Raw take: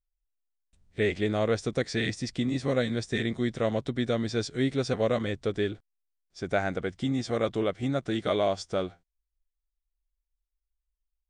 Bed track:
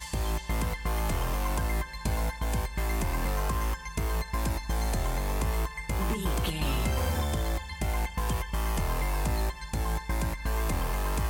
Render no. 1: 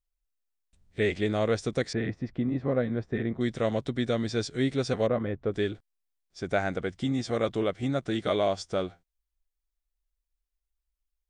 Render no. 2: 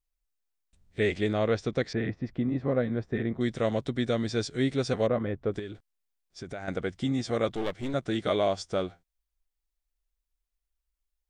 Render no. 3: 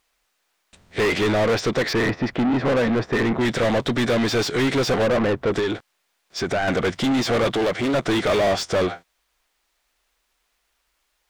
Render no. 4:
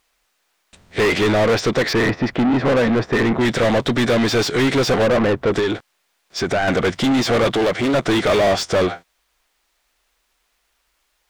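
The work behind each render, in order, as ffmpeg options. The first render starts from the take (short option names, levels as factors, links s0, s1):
-filter_complex "[0:a]asettb=1/sr,asplit=3[s0][s1][s2];[s0]atrim=end=1.934[s3];[s1]atrim=start=1.93:end=3.41,asetpts=PTS-STARTPTS,afade=t=in:d=0.004:c=qsin,afade=t=out:st=1.476:d=0.004:c=qsin,lowpass=1400[s4];[s2]atrim=start=3.406[s5];[s3][s4]acrossfade=d=0.004:c1=hsin:c2=qsin[s6];[s6][s5]acrossfade=d=0.004:c1=qsin:c2=hsin,asplit=3[s7][s8][s9];[s7]afade=t=out:st=5.06:d=0.02[s10];[s8]lowpass=1500,afade=t=in:st=5.06:d=0.02,afade=t=out:st=5.51:d=0.02[s11];[s9]afade=t=in:st=5.51:d=0.02[s12];[s10][s11][s12]amix=inputs=3:normalize=0"
-filter_complex "[0:a]asettb=1/sr,asplit=3[s0][s1][s2];[s0]atrim=end=1.334[s3];[s1]atrim=start=1.33:end=2.24,asetpts=PTS-STARTPTS,afade=t=in:d=0.004:c=qsin,afade=t=out:st=0.906:d=0.004:c=qsin,lowpass=4700[s4];[s2]atrim=start=2.236[s5];[s3][s4]acrossfade=d=0.004:c1=hsin:c2=qsin[s6];[s6][s5]acrossfade=d=0.004:c1=qsin:c2=hsin,asettb=1/sr,asplit=3[s7][s8][s9];[s7]atrim=end=5.594[s10];[s8]atrim=start=5.59:end=6.68,asetpts=PTS-STARTPTS,afade=t=in:d=0.004:c=qsin,afade=t=out:st=1.086:d=0.004:c=qsin,acompressor=threshold=0.02:ratio=6:attack=3.2:release=140:knee=1:detection=peak[s11];[s9]atrim=start=6.676[s12];[s10][s11]acrossfade=d=0.004:c1=hsin:c2=qsin[s13];[s13][s12]acrossfade=d=0.004:c1=qsin:c2=hsin,asettb=1/sr,asplit=3[s14][s15][s16];[s14]atrim=end=7.544[s17];[s15]atrim=start=7.54:end=7.94,asetpts=PTS-STARTPTS,afade=t=in:d=0.004:c=qsin,afade=t=out:st=0.396:d=0.004:c=qsin,aeval=exprs='clip(val(0),-1,0.0119)':c=same[s18];[s16]atrim=start=7.936[s19];[s17][s18]acrossfade=d=0.004:c1=hsin:c2=qsin[s20];[s20][s19]acrossfade=d=0.004:c1=qsin:c2=hsin"
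-filter_complex "[0:a]asplit=2[s0][s1];[s1]highpass=f=720:p=1,volume=50.1,asoftclip=type=tanh:threshold=0.237[s2];[s0][s2]amix=inputs=2:normalize=0,lowpass=f=2600:p=1,volume=0.501"
-af "volume=1.5"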